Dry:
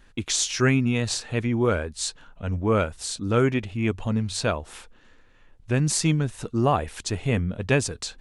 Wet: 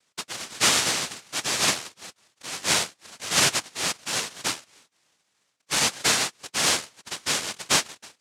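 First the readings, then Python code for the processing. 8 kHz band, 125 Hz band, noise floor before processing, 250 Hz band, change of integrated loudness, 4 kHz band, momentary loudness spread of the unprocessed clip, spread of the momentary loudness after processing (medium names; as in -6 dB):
+6.0 dB, -17.5 dB, -54 dBFS, -13.0 dB, +1.0 dB, +8.0 dB, 9 LU, 15 LU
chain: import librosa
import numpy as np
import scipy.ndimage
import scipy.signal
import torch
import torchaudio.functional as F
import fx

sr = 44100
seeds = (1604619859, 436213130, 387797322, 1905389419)

y = scipy.signal.sosfilt(scipy.signal.butter(4, 5000.0, 'lowpass', fs=sr, output='sos'), x)
y = fx.noise_vocoder(y, sr, seeds[0], bands=1)
y = fx.upward_expand(y, sr, threshold_db=-37.0, expansion=1.5)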